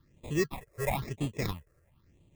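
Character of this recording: aliases and images of a low sample rate 1500 Hz, jitter 0%; phasing stages 6, 1 Hz, lowest notch 230–1500 Hz

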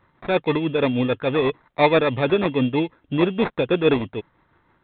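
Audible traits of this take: aliases and images of a low sample rate 3000 Hz, jitter 0%; tremolo triangle 6.2 Hz, depth 55%; µ-law

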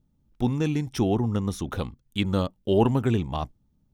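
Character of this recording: noise floor -69 dBFS; spectral tilt -7.0 dB/oct

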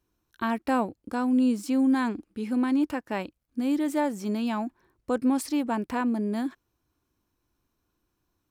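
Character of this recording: noise floor -78 dBFS; spectral tilt -5.5 dB/oct

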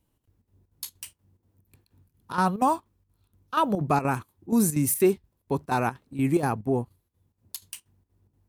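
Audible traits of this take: chopped level 4.2 Hz, depth 65%, duty 75%

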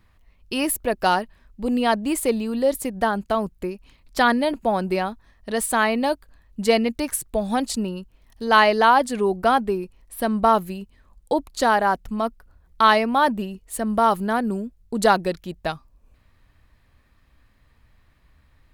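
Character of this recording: noise floor -59 dBFS; spectral tilt -4.0 dB/oct

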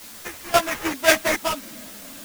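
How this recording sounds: aliases and images of a low sample rate 4100 Hz, jitter 20%; random-step tremolo 3.7 Hz, depth 90%; a quantiser's noise floor 8-bit, dither triangular; a shimmering, thickened sound

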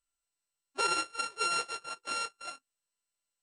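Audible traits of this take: a buzz of ramps at a fixed pitch in blocks of 32 samples; MP2

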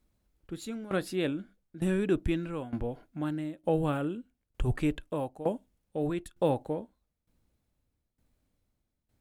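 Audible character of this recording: tremolo saw down 1.1 Hz, depth 85%

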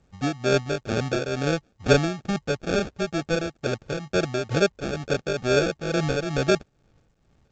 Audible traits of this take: aliases and images of a low sample rate 1000 Hz, jitter 0%; tremolo triangle 2.2 Hz, depth 70%; A-law

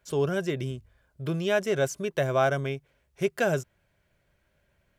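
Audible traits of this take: noise floor -71 dBFS; spectral tilt -5.0 dB/oct

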